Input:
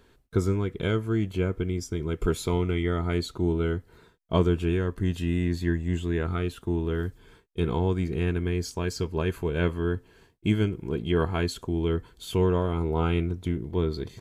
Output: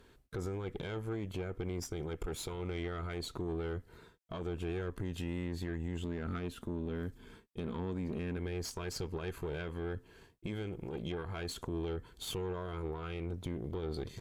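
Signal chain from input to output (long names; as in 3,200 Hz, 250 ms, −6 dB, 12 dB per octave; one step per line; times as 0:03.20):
0:06.04–0:08.37: parametric band 230 Hz +11 dB 0.44 octaves
downward compressor 2.5 to 1, threshold −31 dBFS, peak gain reduction 10 dB
brickwall limiter −28 dBFS, peak gain reduction 10 dB
tube saturation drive 33 dB, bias 0.75
level +2.5 dB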